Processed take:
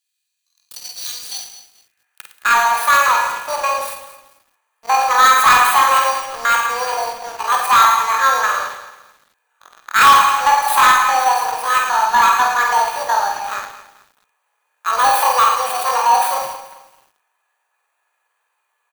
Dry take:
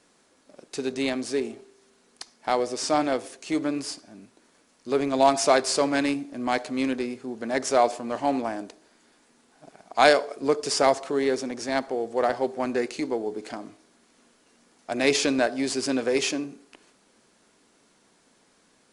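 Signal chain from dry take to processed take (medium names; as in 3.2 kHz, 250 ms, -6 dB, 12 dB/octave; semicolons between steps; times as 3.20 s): bit-reversed sample order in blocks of 16 samples; small resonant body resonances 900/1300 Hz, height 14 dB, ringing for 90 ms; high-pass sweep 2.3 kHz -> 530 Hz, 1.25–2.39 s; pitch shift +11 st; on a send: reverse bouncing-ball echo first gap 50 ms, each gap 1.2×, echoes 5; on the sum: waveshaping leveller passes 3; Schroeder reverb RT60 0.41 s, combs from 31 ms, DRR 9.5 dB; bit-crushed delay 218 ms, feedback 35%, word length 6-bit, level -14 dB; trim -5 dB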